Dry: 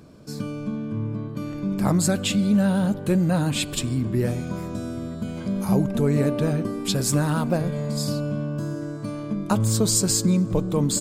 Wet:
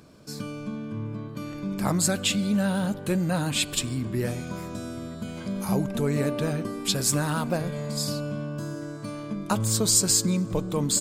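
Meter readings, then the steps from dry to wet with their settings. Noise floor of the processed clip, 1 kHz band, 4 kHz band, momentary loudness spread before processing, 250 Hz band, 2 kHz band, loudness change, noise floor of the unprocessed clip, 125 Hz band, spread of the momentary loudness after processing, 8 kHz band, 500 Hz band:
-38 dBFS, -1.5 dB, +1.0 dB, 11 LU, -5.0 dB, +0.5 dB, -3.0 dB, -34 dBFS, -5.0 dB, 13 LU, +1.5 dB, -3.5 dB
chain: tilt shelf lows -3.5 dB, about 780 Hz; gain -2 dB

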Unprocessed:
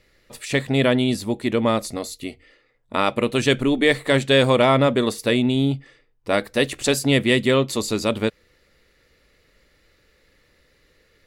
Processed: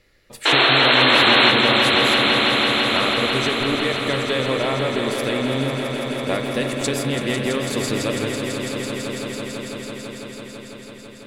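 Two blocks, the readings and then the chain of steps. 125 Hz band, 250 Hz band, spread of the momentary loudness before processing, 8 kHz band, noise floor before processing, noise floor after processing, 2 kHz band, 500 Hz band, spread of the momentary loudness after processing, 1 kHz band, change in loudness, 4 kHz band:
-2.5 dB, -1.5 dB, 13 LU, +1.0 dB, -62 dBFS, -41 dBFS, +6.5 dB, -1.0 dB, 18 LU, +5.0 dB, +2.0 dB, +9.0 dB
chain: compressor, threshold -21 dBFS, peak gain reduction 9.5 dB; painted sound noise, 0.45–1.51, 260–4300 Hz -16 dBFS; swelling echo 0.166 s, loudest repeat 5, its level -9.5 dB; spring tank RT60 3.9 s, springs 38 ms, chirp 60 ms, DRR 5.5 dB

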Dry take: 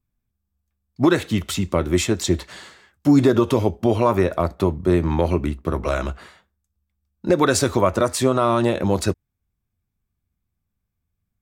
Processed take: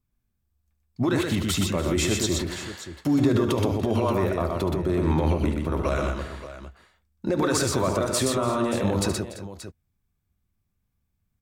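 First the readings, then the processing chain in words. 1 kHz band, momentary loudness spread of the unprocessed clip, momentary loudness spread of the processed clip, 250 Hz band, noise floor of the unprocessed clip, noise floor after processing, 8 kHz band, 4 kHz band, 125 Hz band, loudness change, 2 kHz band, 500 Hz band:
-5.5 dB, 8 LU, 13 LU, -4.5 dB, -79 dBFS, -76 dBFS, -0.5 dB, -0.5 dB, -3.0 dB, -4.5 dB, -3.5 dB, -5.5 dB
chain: limiter -15.5 dBFS, peak gain reduction 9.5 dB; tapped delay 73/123/289/338/579 ms -11/-3.5/-18.5/-17/-13 dB

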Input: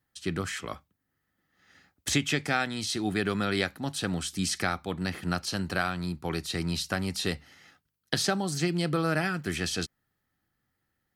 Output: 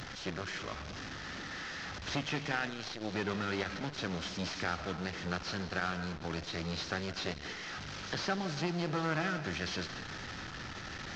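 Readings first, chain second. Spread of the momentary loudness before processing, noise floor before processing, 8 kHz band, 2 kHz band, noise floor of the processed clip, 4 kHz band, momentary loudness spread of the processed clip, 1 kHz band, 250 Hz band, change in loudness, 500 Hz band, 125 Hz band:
7 LU, -80 dBFS, -12.5 dB, -4.5 dB, -45 dBFS, -6.0 dB, 8 LU, -4.5 dB, -7.5 dB, -7.0 dB, -6.0 dB, -6.5 dB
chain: delta modulation 32 kbps, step -32 dBFS; bell 1500 Hz +3 dB 0.45 oct; digital reverb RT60 0.78 s, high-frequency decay 0.95×, pre-delay 0.12 s, DRR 11 dB; core saturation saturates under 940 Hz; gain -4.5 dB

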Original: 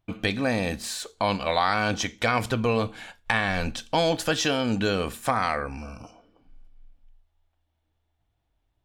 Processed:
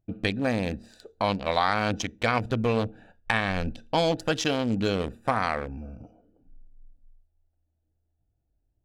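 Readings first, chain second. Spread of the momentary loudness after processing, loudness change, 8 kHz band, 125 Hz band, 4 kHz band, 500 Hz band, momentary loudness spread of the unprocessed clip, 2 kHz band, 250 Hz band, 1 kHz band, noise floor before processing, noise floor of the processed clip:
9 LU, -1.5 dB, -6.5 dB, 0.0 dB, -3.5 dB, -1.0 dB, 9 LU, -2.5 dB, -0.5 dB, -1.5 dB, -75 dBFS, -76 dBFS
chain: Wiener smoothing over 41 samples

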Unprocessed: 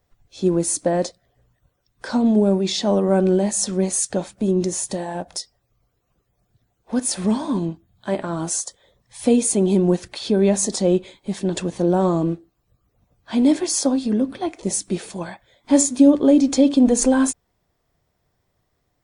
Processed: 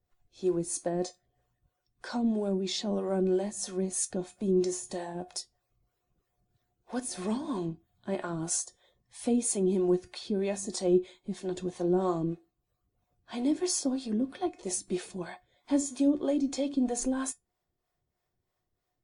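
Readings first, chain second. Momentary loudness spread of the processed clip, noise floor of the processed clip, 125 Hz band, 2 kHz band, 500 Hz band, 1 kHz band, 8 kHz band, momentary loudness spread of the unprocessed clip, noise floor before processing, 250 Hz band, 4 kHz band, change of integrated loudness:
11 LU, -83 dBFS, -12.0 dB, -11.0 dB, -10.0 dB, -10.5 dB, -11.0 dB, 13 LU, -71 dBFS, -11.5 dB, -10.0 dB, -11.0 dB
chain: resonator 360 Hz, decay 0.17 s, harmonics all, mix 70%; harmonic tremolo 3.1 Hz, depth 70%, crossover 430 Hz; vocal rider within 3 dB 2 s

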